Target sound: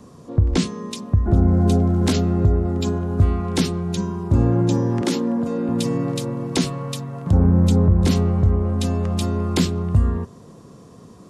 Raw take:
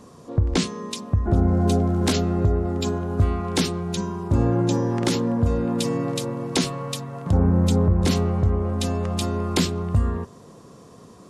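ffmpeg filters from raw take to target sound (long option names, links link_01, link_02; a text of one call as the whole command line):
ffmpeg -i in.wav -filter_complex "[0:a]asettb=1/sr,asplit=3[link_01][link_02][link_03];[link_01]atrim=end=5.014[link_04];[link_02]atrim=start=5.01:end=5.69,asetpts=PTS-STARTPTS,afade=type=in:duration=0.004:curve=qsin,afade=type=out:start_time=0.676:duration=0.004:curve=qsin,highpass=frequency=190:width=0.5412,highpass=frequency=190:width=1.3066[link_05];[link_03]atrim=start=5.686[link_06];[link_04][link_05]acrossfade=duration=0.004:curve1=hsin:curve2=qsin[link_07];[link_07][link_06]acrossfade=duration=0.004:curve1=qsin:curve2=hsin,acrossover=split=320|890|6000[link_08][link_09][link_10][link_11];[link_08]acontrast=29[link_12];[link_12][link_09][link_10][link_11]amix=inputs=4:normalize=0,volume=-1dB" out.wav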